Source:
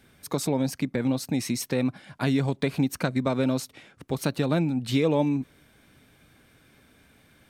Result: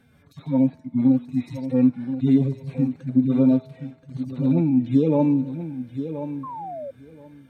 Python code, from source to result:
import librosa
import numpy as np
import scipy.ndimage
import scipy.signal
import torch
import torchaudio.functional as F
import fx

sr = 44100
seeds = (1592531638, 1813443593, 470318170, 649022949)

y = fx.hpss_only(x, sr, part='harmonic')
y = fx.comb_fb(y, sr, f0_hz=81.0, decay_s=1.5, harmonics='all', damping=0.0, mix_pct=50)
y = fx.echo_feedback(y, sr, ms=1027, feedback_pct=17, wet_db=-10)
y = fx.dynamic_eq(y, sr, hz=250.0, q=4.1, threshold_db=-46.0, ratio=4.0, max_db=7)
y = fx.spec_paint(y, sr, seeds[0], shape='fall', start_s=6.43, length_s=0.48, low_hz=530.0, high_hz=1100.0, level_db=-41.0)
y = fx.high_shelf(y, sr, hz=2100.0, db=-10.0)
y = y * 10.0 ** (9.0 / 20.0)